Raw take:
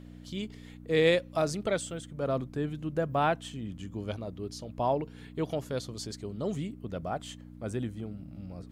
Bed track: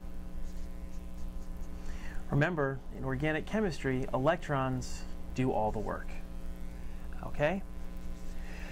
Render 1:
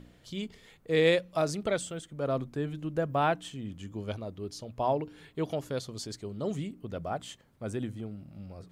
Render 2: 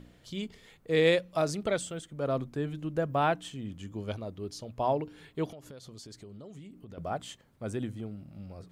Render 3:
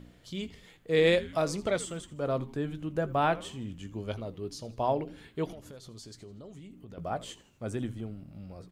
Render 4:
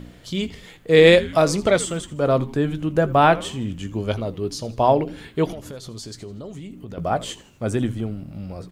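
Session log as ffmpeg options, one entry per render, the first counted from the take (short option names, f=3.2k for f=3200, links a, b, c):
-af "bandreject=f=60:t=h:w=4,bandreject=f=120:t=h:w=4,bandreject=f=180:t=h:w=4,bandreject=f=240:t=h:w=4,bandreject=f=300:t=h:w=4"
-filter_complex "[0:a]asettb=1/sr,asplit=3[a][b][c];[a]atrim=end=5.484[d];[b]atrim=start=5.48:end=6.98,asetpts=PTS-STARTPTS,afade=t=in:d=0.004:c=qsin,afade=t=out:st=1.496:d=0.004:c=qsin,acompressor=threshold=-43dB:ratio=12:attack=3.2:release=140:knee=1:detection=peak[e];[c]atrim=start=6.976[f];[d][e]acrossfade=d=0.004:c1=hsin:c2=qsin[g];[g][f]acrossfade=d=0.004:c1=qsin:c2=hsin"
-filter_complex "[0:a]asplit=2[a][b];[b]adelay=17,volume=-13dB[c];[a][c]amix=inputs=2:normalize=0,asplit=5[d][e][f][g][h];[e]adelay=81,afreqshift=-130,volume=-18dB[i];[f]adelay=162,afreqshift=-260,volume=-24dB[j];[g]adelay=243,afreqshift=-390,volume=-30dB[k];[h]adelay=324,afreqshift=-520,volume=-36.1dB[l];[d][i][j][k][l]amix=inputs=5:normalize=0"
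-af "volume=11.5dB"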